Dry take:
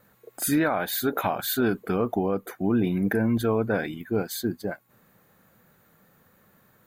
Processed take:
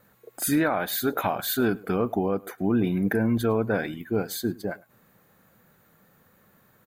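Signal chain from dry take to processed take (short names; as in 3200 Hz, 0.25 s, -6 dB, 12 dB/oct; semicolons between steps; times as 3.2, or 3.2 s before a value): outdoor echo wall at 18 m, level -23 dB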